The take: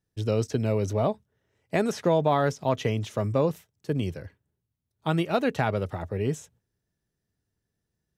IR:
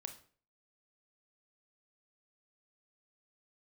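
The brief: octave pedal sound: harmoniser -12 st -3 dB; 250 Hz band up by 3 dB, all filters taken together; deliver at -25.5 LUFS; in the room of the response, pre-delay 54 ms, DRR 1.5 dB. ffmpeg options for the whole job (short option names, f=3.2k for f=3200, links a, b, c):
-filter_complex "[0:a]equalizer=f=250:t=o:g=4,asplit=2[a][b];[1:a]atrim=start_sample=2205,adelay=54[c];[b][c]afir=irnorm=-1:irlink=0,volume=2dB[d];[a][d]amix=inputs=2:normalize=0,asplit=2[e][f];[f]asetrate=22050,aresample=44100,atempo=2,volume=-3dB[g];[e][g]amix=inputs=2:normalize=0,volume=-3.5dB"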